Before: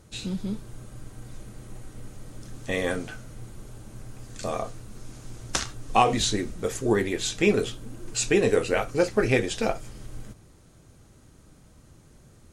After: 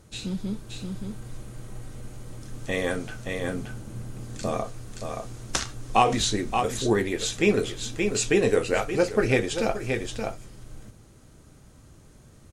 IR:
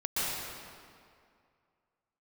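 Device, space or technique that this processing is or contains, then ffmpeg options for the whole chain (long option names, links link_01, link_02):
ducked delay: -filter_complex "[0:a]asplit=3[link_01][link_02][link_03];[link_02]adelay=575,volume=-4dB[link_04];[link_03]apad=whole_len=577592[link_05];[link_04][link_05]sidechaincompress=threshold=-31dB:ratio=8:attack=9.5:release=264[link_06];[link_01][link_06]amix=inputs=2:normalize=0,asettb=1/sr,asplit=3[link_07][link_08][link_09];[link_07]atrim=end=3.444[link_10];[link_08]atrim=start=3.44:end=4.62,asetpts=PTS-STARTPTS,afade=type=in:duration=0.004:curve=qsin,afade=type=out:start_time=1.176:duration=0.004:curve=qsin,equalizer=frequency=190:width_type=o:width=1.9:gain=6[link_11];[link_09]atrim=start=4.616[link_12];[link_10][link_11]acrossfade=duration=0.004:curve1=hsin:curve2=qsin[link_13];[link_13][link_12]acrossfade=duration=0.004:curve1=qsin:curve2=hsin"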